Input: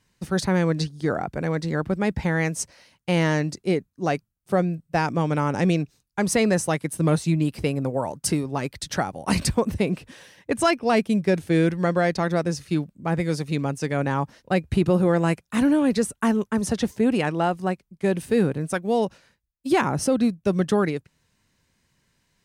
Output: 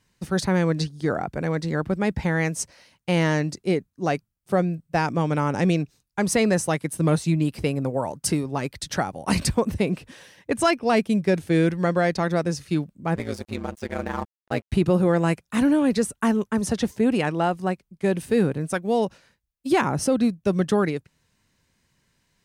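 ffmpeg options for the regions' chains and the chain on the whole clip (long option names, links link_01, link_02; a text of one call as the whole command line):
ffmpeg -i in.wav -filter_complex "[0:a]asettb=1/sr,asplit=3[link_01][link_02][link_03];[link_01]atrim=end=13.154[link_04];[link_02]atrim=start=13.15:end=14.73,asetpts=PTS-STARTPTS,afade=type=in:duration=0.004:curve=qsin,afade=type=out:start_time=1.576:duration=0.004:curve=qsin,lowshelf=frequency=180:gain=-3.5,aeval=exprs='sgn(val(0))*max(abs(val(0))-0.0126,0)':channel_layout=same,aeval=exprs='val(0)*sin(2*PI*56*n/s)':channel_layout=same[link_05];[link_03]atrim=start=14.726[link_06];[link_04][link_05]acrossfade=duration=0.004:curve1=hsin:curve2=qsin[link_07];[link_07][link_06]acrossfade=duration=0.004:curve1=qsin:curve2=hsin" out.wav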